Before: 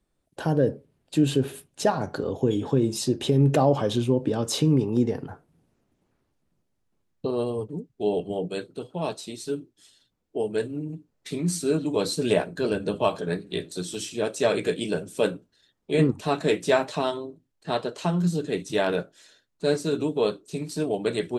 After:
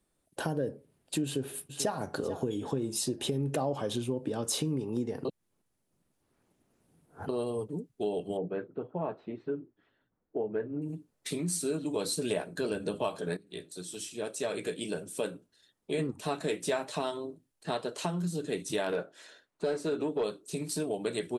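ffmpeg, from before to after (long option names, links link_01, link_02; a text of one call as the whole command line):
ffmpeg -i in.wav -filter_complex "[0:a]asplit=2[link_01][link_02];[link_02]afade=type=in:start_time=1.25:duration=0.01,afade=type=out:start_time=2.01:duration=0.01,aecho=0:1:440|880|1320:0.133352|0.0400056|0.0120017[link_03];[link_01][link_03]amix=inputs=2:normalize=0,asettb=1/sr,asplit=3[link_04][link_05][link_06];[link_04]atrim=end=8.374[link_07];[link_05]atrim=start=8.37:end=10.82,asetpts=PTS-STARTPTS,afade=type=in:duration=0.004:curve=qsin,afade=type=out:start_time=2.446:duration=0.004:curve=qsin,lowpass=frequency=1800:width=0.5412,lowpass=frequency=1800:width=1.3066[link_08];[link_06]atrim=start=10.816[link_09];[link_07][link_08]acrossfade=duration=0.004:curve1=hsin:curve2=qsin[link_10];[link_10][link_09]acrossfade=duration=0.004:curve1=qsin:curve2=hsin,asettb=1/sr,asplit=3[link_11][link_12][link_13];[link_11]atrim=end=18.924[link_14];[link_12]atrim=start=18.92:end=20.24,asetpts=PTS-STARTPTS,afade=type=in:duration=0.004:curve=qsin,afade=type=out:start_time=1.316:duration=0.004:curve=qsin,asplit=2[link_15][link_16];[link_16]highpass=frequency=720:poles=1,volume=16dB,asoftclip=type=tanh:threshold=-10.5dB[link_17];[link_15][link_17]amix=inputs=2:normalize=0,lowpass=frequency=1000:poles=1,volume=-6dB[link_18];[link_13]atrim=start=20.236[link_19];[link_14][link_18]acrossfade=duration=0.004:curve1=hsin:curve2=qsin[link_20];[link_20][link_19]acrossfade=duration=0.004:curve1=qsin:curve2=hsin,asplit=4[link_21][link_22][link_23][link_24];[link_21]atrim=end=5.252[link_25];[link_22]atrim=start=5.248:end=7.292,asetpts=PTS-STARTPTS,areverse[link_26];[link_23]atrim=start=7.288:end=13.37,asetpts=PTS-STARTPTS,afade=type=out:start_time=6.078:duration=0.004:curve=hsin:silence=0.211349[link_27];[link_24]atrim=start=13.37,asetpts=PTS-STARTPTS,afade=type=in:duration=3.4:silence=0.211349[link_28];[link_25][link_26]acrossfade=duration=0.004:curve1=hsin:curve2=hsin[link_29];[link_27][link_28]concat=n=2:v=0:a=1[link_30];[link_29][link_30]acrossfade=duration=0.004:curve1=hsin:curve2=hsin,equalizer=frequency=10000:width=1.6:gain=9,acompressor=threshold=-30dB:ratio=3,lowshelf=frequency=120:gain=-6.5" out.wav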